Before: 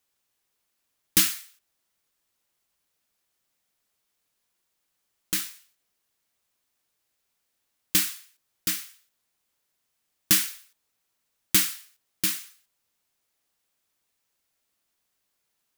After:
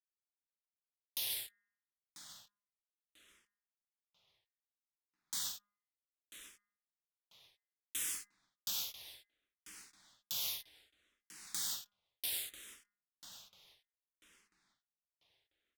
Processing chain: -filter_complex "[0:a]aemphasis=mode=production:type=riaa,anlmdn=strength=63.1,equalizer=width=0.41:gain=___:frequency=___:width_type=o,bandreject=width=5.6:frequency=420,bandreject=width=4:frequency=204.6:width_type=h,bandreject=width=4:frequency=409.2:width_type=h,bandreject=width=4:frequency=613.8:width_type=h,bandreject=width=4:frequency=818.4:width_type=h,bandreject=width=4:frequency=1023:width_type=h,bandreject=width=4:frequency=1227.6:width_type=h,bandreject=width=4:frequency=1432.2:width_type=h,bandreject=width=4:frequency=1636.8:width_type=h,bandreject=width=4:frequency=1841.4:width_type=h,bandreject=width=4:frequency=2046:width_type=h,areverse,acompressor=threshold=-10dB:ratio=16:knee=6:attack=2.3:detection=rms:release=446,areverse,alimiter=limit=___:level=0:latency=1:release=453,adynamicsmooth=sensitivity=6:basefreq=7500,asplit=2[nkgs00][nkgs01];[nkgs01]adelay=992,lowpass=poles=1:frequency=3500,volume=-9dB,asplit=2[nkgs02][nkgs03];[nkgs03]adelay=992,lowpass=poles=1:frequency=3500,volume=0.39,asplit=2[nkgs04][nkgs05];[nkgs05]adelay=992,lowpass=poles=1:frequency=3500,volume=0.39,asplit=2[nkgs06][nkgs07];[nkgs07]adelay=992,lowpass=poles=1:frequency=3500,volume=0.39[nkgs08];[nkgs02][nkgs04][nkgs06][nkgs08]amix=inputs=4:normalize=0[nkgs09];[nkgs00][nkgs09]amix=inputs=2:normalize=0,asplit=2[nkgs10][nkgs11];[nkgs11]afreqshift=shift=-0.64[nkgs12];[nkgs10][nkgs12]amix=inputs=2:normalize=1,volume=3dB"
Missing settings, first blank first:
8, 3500, -13dB